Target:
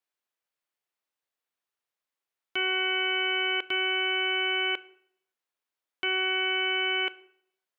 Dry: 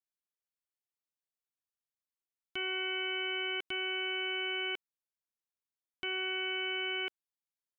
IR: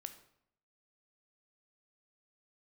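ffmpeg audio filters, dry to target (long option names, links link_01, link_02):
-filter_complex "[0:a]bass=frequency=250:gain=-14,treble=frequency=4000:gain=-8,acontrast=37,asplit=2[link_01][link_02];[1:a]atrim=start_sample=2205[link_03];[link_02][link_03]afir=irnorm=-1:irlink=0,volume=0dB[link_04];[link_01][link_04]amix=inputs=2:normalize=0"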